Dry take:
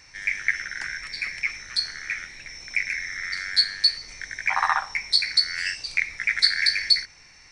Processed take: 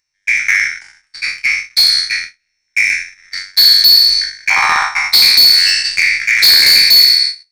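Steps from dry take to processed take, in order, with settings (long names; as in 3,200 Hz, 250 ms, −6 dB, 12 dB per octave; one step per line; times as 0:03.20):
peak hold with a decay on every bin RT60 1.49 s
high-shelf EQ 2,600 Hz +11 dB
in parallel at −1 dB: upward compression, threshold −13 dBFS
on the sum: hard clipping −3 dBFS, distortion −10 dB
four-comb reverb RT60 0.32 s, combs from 26 ms, DRR 17.5 dB
noise gate −12 dBFS, range −47 dB
level −1.5 dB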